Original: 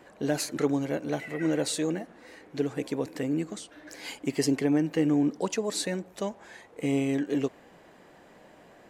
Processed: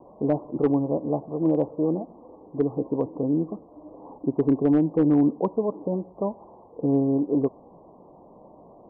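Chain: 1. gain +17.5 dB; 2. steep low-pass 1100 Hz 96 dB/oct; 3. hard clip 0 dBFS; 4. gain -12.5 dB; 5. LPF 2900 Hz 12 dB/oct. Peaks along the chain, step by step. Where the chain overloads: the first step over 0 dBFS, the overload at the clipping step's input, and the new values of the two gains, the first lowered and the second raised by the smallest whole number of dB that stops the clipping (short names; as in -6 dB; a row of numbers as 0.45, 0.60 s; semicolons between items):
+5.5, +4.5, 0.0, -12.5, -12.5 dBFS; step 1, 4.5 dB; step 1 +12.5 dB, step 4 -7.5 dB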